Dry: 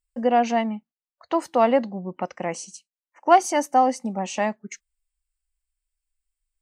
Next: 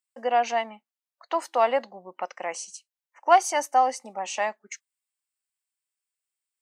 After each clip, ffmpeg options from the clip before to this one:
-af "highpass=650"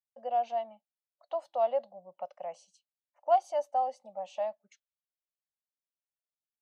-af "firequalizer=gain_entry='entry(160,0);entry(270,-15);entry(410,-17);entry(580,5);entry(940,-10);entry(1900,-21);entry(3400,-7);entry(5600,-19);entry(8900,-22)':delay=0.05:min_phase=1,volume=-5.5dB"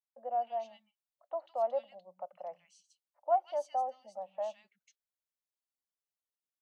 -filter_complex "[0:a]acrossover=split=170|2000[a][b][c];[a]adelay=110[d];[c]adelay=160[e];[d][b][e]amix=inputs=3:normalize=0,volume=-3.5dB"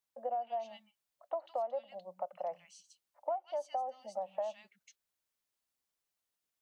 -af "acompressor=threshold=-39dB:ratio=16,volume=6.5dB"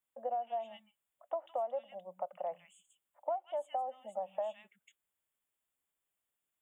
-af "asuperstop=centerf=5000:order=20:qfactor=1.6"

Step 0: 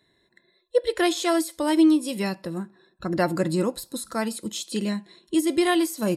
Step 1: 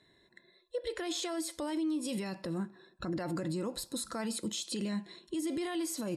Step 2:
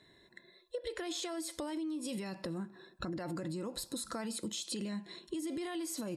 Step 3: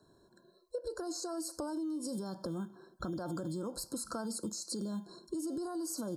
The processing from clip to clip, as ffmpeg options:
-af "lowpass=9.5k,acompressor=threshold=-23dB:ratio=6,alimiter=level_in=3.5dB:limit=-24dB:level=0:latency=1:release=31,volume=-3.5dB"
-af "acompressor=threshold=-39dB:ratio=6,volume=3dB"
-filter_complex "[0:a]acrossover=split=160[a][b];[a]acrusher=samples=13:mix=1:aa=0.000001[c];[b]asuperstop=centerf=2600:order=20:qfactor=1[d];[c][d]amix=inputs=2:normalize=0,volume=1dB"

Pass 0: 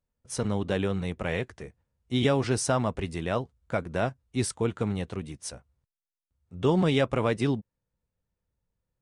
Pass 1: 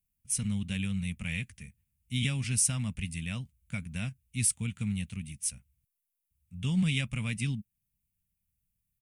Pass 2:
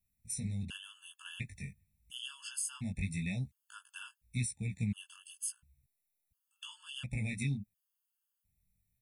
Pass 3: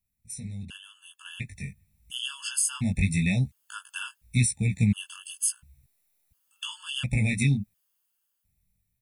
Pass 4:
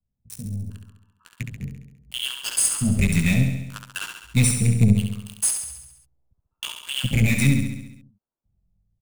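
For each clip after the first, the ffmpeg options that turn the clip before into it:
-af "firequalizer=gain_entry='entry(210,0);entry(350,-25);entry(790,-22);entry(1600,-11);entry(2400,5);entry(4000,-4);entry(11000,15)':delay=0.05:min_phase=1,volume=-1.5dB"
-af "acompressor=threshold=-35dB:ratio=6,flanger=delay=15:depth=6.8:speed=0.87,afftfilt=real='re*gt(sin(2*PI*0.71*pts/sr)*(1-2*mod(floor(b*sr/1024/880),2)),0)':imag='im*gt(sin(2*PI*0.71*pts/sr)*(1-2*mod(floor(b*sr/1024/880),2)),0)':win_size=1024:overlap=0.75,volume=6dB"
-af "dynaudnorm=f=500:g=7:m=12dB"
-filter_complex "[0:a]acrossover=split=110|920[a][b][c];[a]aeval=exprs='0.1*(cos(1*acos(clip(val(0)/0.1,-1,1)))-cos(1*PI/2))+0.0141*(cos(8*acos(clip(val(0)/0.1,-1,1)))-cos(8*PI/2))':c=same[d];[c]acrusher=bits=4:mix=0:aa=0.5[e];[d][b][e]amix=inputs=3:normalize=0,aecho=1:1:68|136|204|272|340|408|476|544:0.501|0.301|0.18|0.108|0.065|0.039|0.0234|0.014,volume=4.5dB"

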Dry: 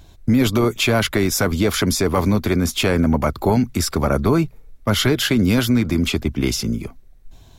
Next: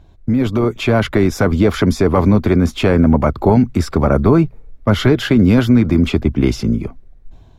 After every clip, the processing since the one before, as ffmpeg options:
-af "lowpass=f=1.2k:p=1,dynaudnorm=f=300:g=5:m=9.5dB"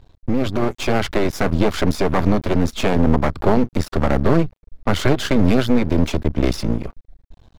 -af "equalizer=f=4.2k:w=2.4:g=5,aeval=exprs='max(val(0),0)':c=same"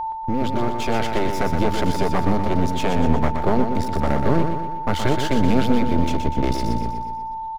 -filter_complex "[0:a]aeval=exprs='val(0)+0.112*sin(2*PI*890*n/s)':c=same,asplit=2[a][b];[b]aecho=0:1:122|244|366|488|610|732:0.473|0.246|0.128|0.0665|0.0346|0.018[c];[a][c]amix=inputs=2:normalize=0,volume=-4.5dB"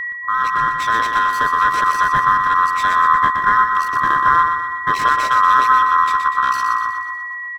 -af "afftfilt=real='real(if(lt(b,960),b+48*(1-2*mod(floor(b/48),2)),b),0)':imag='imag(if(lt(b,960),b+48*(1-2*mod(floor(b/48),2)),b),0)':win_size=2048:overlap=0.75,volume=1.5dB"

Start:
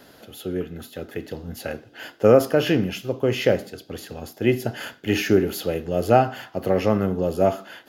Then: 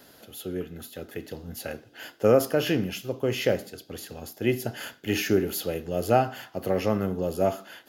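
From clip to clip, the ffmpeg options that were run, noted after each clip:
-af "highshelf=f=5.3k:g=8,volume=-5dB"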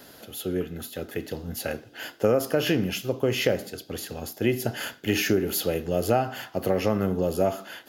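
-af "acompressor=threshold=-24dB:ratio=3,volume=4.5dB"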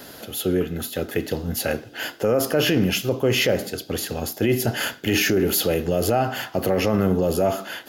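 -af "alimiter=limit=-18.5dB:level=0:latency=1:release=13,volume=7.5dB"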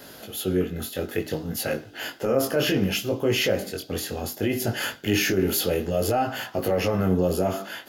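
-af "flanger=delay=18.5:depth=3.8:speed=0.62"

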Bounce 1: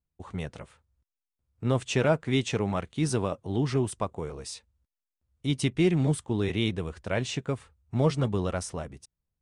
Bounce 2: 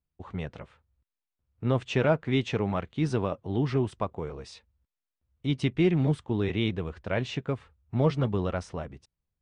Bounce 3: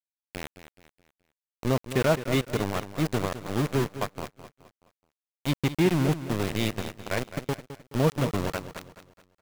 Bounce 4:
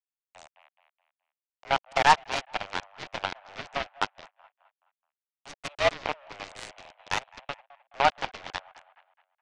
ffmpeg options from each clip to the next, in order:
-af "lowpass=3.6k"
-filter_complex "[0:a]aeval=exprs='val(0)*gte(abs(val(0)),0.0531)':c=same,asplit=2[a][b];[b]aecho=0:1:212|424|636|848:0.237|0.0925|0.0361|0.0141[c];[a][c]amix=inputs=2:normalize=0,volume=1dB"
-af "highpass=f=360:t=q:w=0.5412,highpass=f=360:t=q:w=1.307,lowpass=f=2.9k:t=q:w=0.5176,lowpass=f=2.9k:t=q:w=0.7071,lowpass=f=2.9k:t=q:w=1.932,afreqshift=290,aeval=exprs='0.251*(cos(1*acos(clip(val(0)/0.251,-1,1)))-cos(1*PI/2))+0.0282*(cos(2*acos(clip(val(0)/0.251,-1,1)))-cos(2*PI/2))+0.0447*(cos(7*acos(clip(val(0)/0.251,-1,1)))-cos(7*PI/2))':c=same,volume=5dB"

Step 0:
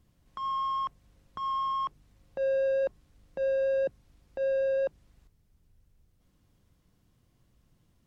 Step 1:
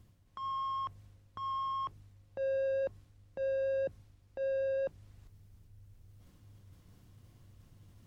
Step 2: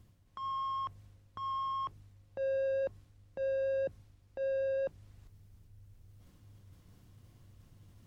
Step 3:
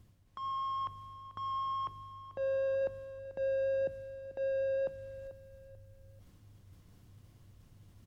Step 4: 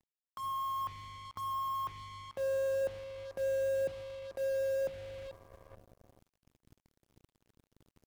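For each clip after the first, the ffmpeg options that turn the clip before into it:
-af "equalizer=f=99:w=6.1:g=14.5,areverse,acompressor=mode=upward:threshold=-41dB:ratio=2.5,areverse,volume=-5.5dB"
-af anull
-af "aecho=1:1:440|880|1320:0.2|0.0678|0.0231"
-af "acrusher=bits=7:mix=0:aa=0.5"

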